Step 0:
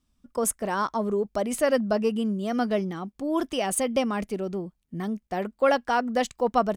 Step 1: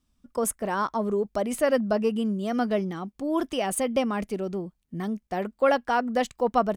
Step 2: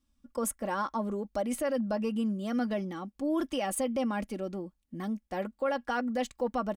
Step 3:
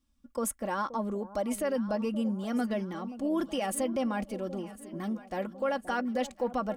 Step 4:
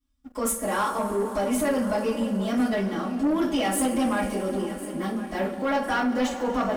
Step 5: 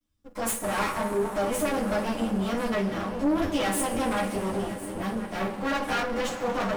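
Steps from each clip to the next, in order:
dynamic EQ 6200 Hz, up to -4 dB, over -43 dBFS, Q 0.75
comb 3.6 ms, depth 55%; limiter -17 dBFS, peak gain reduction 9 dB; gain -5 dB
echo with dull and thin repeats by turns 0.526 s, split 920 Hz, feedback 69%, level -13.5 dB
two-slope reverb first 0.29 s, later 4.2 s, from -21 dB, DRR -9.5 dB; sample leveller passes 2; gain -8 dB
minimum comb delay 9.9 ms

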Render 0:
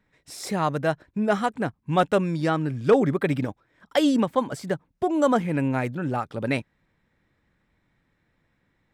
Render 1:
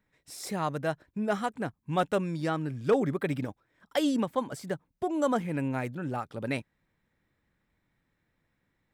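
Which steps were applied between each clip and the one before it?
high shelf 9500 Hz +7.5 dB; gain -6.5 dB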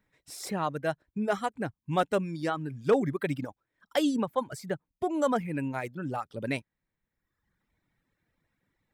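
reverb removal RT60 1.1 s; gain +1 dB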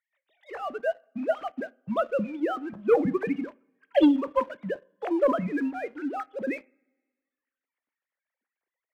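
sine-wave speech; two-slope reverb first 0.39 s, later 1.6 s, from -20 dB, DRR 13.5 dB; sample leveller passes 1

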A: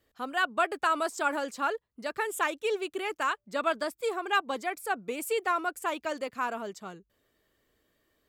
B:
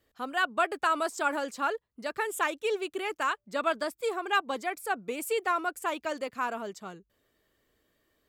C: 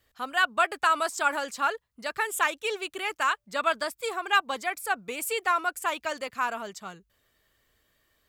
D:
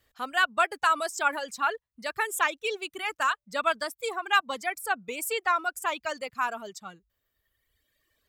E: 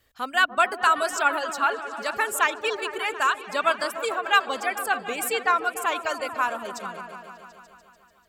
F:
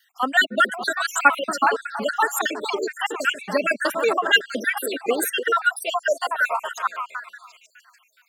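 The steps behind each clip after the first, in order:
nothing audible
bell 330 Hz -10 dB 2 oct; gain +5.5 dB
reverb removal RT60 1.7 s
repeats that get brighter 0.147 s, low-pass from 400 Hz, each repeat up 1 oct, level -6 dB; gain +3.5 dB
random spectral dropouts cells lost 59%; high-pass sweep 190 Hz -> 2000 Hz, 4.34–7.62; gain +7 dB

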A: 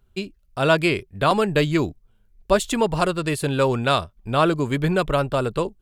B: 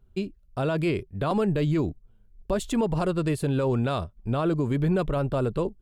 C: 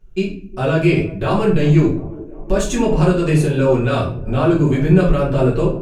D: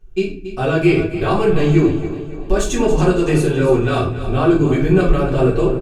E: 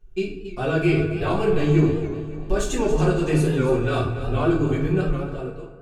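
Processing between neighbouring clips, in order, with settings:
tilt shelf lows +5.5 dB, about 810 Hz; limiter -13.5 dBFS, peak gain reduction 10 dB; gain -3 dB
thirty-one-band EQ 1600 Hz +5 dB, 2500 Hz +8 dB, 6300 Hz +12 dB; band-limited delay 0.359 s, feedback 67%, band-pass 440 Hz, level -17.5 dB; shoebox room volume 48 m³, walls mixed, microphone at 1.5 m; gain -1 dB
comb 2.6 ms, depth 37%; on a send: feedback echo 0.28 s, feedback 44%, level -12 dB
ending faded out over 1.32 s; FDN reverb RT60 2.1 s, low-frequency decay 1×, high-frequency decay 0.45×, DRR 8 dB; record warp 78 rpm, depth 100 cents; gain -6 dB

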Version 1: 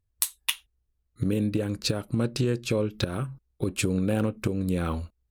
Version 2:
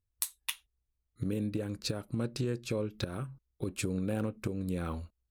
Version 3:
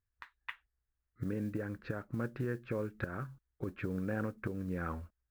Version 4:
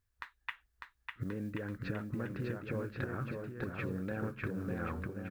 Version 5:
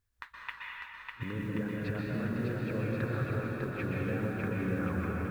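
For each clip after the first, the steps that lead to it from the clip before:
dynamic EQ 3000 Hz, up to -4 dB, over -51 dBFS, Q 4; gain -7.5 dB
ladder low-pass 1900 Hz, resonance 60%; modulation noise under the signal 31 dB; gain +7 dB
compressor, threshold -41 dBFS, peak gain reduction 10.5 dB; on a send: bouncing-ball echo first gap 0.6 s, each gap 0.8×, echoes 5; on the sum: gain +5.5 dB
plate-style reverb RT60 2.6 s, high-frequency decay 0.9×, pre-delay 0.11 s, DRR -3 dB

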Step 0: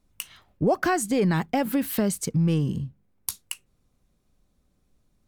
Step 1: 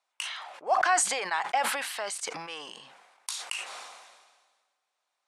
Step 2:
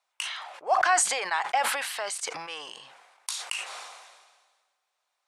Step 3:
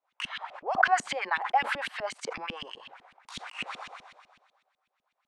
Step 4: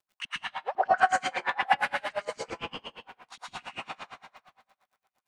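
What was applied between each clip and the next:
elliptic band-pass 770–9600 Hz, stop band 80 dB; high shelf 7400 Hz -12 dB; sustainer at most 39 dB/s; gain +2.5 dB
bell 220 Hz -9 dB 1.1 oct; gain +2 dB
in parallel at -2 dB: compressor, threshold -36 dBFS, peak gain reduction 17 dB; on the sum: LFO band-pass saw up 8 Hz 210–3200 Hz; gain +3.5 dB
plate-style reverb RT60 0.98 s, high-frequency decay 0.7×, pre-delay 0.1 s, DRR -6 dB; crackle 190/s -55 dBFS; dB-linear tremolo 8.7 Hz, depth 30 dB

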